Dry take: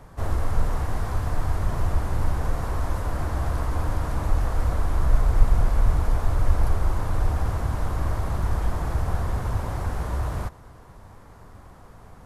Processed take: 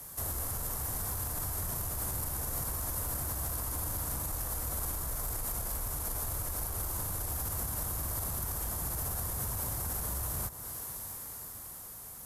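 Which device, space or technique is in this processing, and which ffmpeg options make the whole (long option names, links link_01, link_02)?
FM broadcast chain: -filter_complex "[0:a]highpass=frequency=63:poles=1,dynaudnorm=framelen=350:gausssize=9:maxgain=8dB,acrossover=split=210|1600|4000[link_01][link_02][link_03][link_04];[link_01]acompressor=threshold=-25dB:ratio=4[link_05];[link_02]acompressor=threshold=-35dB:ratio=4[link_06];[link_03]acompressor=threshold=-55dB:ratio=4[link_07];[link_04]acompressor=threshold=-56dB:ratio=4[link_08];[link_05][link_06][link_07][link_08]amix=inputs=4:normalize=0,aemphasis=mode=production:type=75fm,alimiter=limit=-23.5dB:level=0:latency=1:release=52,asoftclip=type=hard:threshold=-25.5dB,lowpass=frequency=15000:width=0.5412,lowpass=frequency=15000:width=1.3066,aemphasis=mode=production:type=75fm,volume=-6dB"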